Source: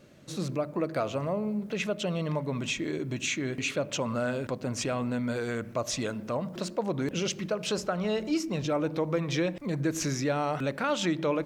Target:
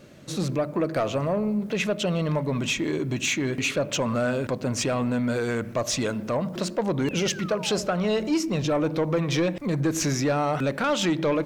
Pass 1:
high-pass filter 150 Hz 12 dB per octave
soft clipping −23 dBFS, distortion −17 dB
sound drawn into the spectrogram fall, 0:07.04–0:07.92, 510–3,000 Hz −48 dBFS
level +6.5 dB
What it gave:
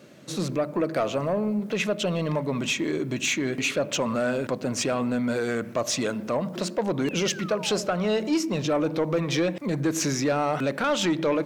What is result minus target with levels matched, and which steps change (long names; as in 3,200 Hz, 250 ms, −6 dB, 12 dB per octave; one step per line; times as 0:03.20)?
125 Hz band −3.0 dB
remove: high-pass filter 150 Hz 12 dB per octave